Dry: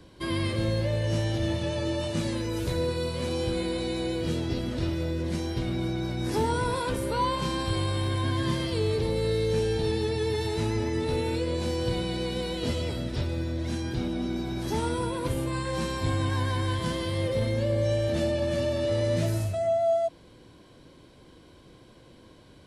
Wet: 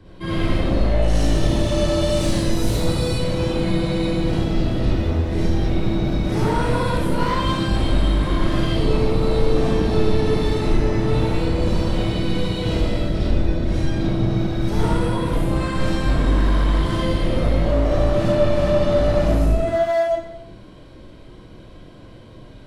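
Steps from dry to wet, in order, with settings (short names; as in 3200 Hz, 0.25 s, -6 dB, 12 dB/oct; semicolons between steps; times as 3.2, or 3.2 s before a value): octaver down 1 oct, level +3 dB; tone controls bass +2 dB, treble -10 dB, from 1.01 s treble +5 dB, from 3.12 s treble -7 dB; hard clip -22.5 dBFS, distortion -11 dB; digital reverb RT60 0.71 s, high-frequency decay 0.95×, pre-delay 15 ms, DRR -7.5 dB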